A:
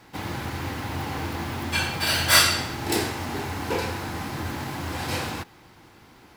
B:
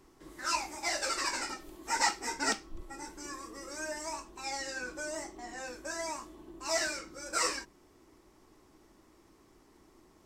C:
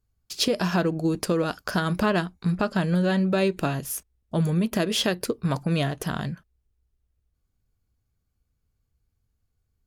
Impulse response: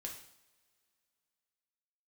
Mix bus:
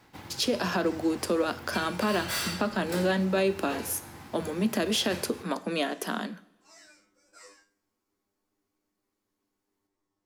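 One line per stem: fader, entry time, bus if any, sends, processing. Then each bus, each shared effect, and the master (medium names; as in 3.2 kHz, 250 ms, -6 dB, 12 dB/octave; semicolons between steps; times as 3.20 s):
-1.0 dB, 0.00 s, send -14 dB, overload inside the chain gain 19 dB; upward expansion 1.5:1, over -34 dBFS; auto duck -11 dB, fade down 0.25 s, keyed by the third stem
-15.0 dB, 0.00 s, send -7 dB, feedback comb 100 Hz, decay 0.23 s, harmonics all, mix 100%
-2.5 dB, 0.00 s, send -6 dB, steep high-pass 190 Hz 96 dB/octave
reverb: on, pre-delay 3 ms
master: peak limiter -16.5 dBFS, peak gain reduction 6.5 dB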